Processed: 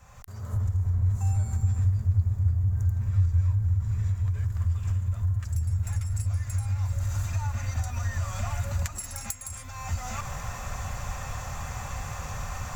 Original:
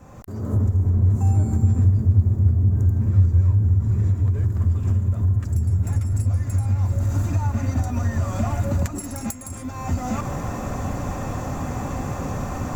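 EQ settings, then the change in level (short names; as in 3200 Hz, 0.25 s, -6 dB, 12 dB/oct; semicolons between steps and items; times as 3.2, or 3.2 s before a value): passive tone stack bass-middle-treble 10-0-10; high shelf 6400 Hz -6 dB; +4.0 dB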